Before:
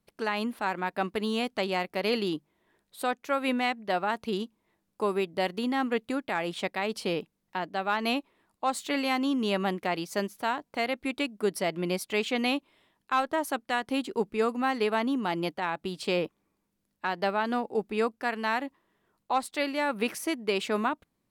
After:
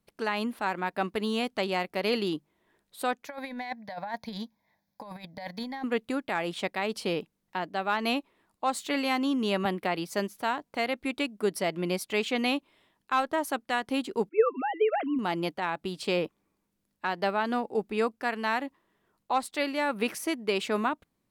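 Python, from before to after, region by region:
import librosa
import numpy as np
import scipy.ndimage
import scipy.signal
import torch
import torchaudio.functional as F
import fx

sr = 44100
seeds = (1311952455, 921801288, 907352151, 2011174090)

y = fx.chain(x, sr, fx.highpass(hz=130.0, slope=6),
    fx.over_compress(threshold_db=-31.0, ratio=-0.5),
    fx.fixed_phaser(hz=1900.0, stages=8), at=(3.27, 5.84))
y = fx.chain(y, sr, fx.peak_eq(hz=6500.0, db=-8.0, octaves=0.4),
    fx.band_squash(depth_pct=40), at=(9.65, 10.1))
y = fx.chain(y, sr, fx.sine_speech(),
    fx.highpass(hz=290.0, slope=12),
    fx.dynamic_eq(hz=660.0, q=1.2, threshold_db=-36.0, ratio=4.0, max_db=5), at=(14.29, 15.19))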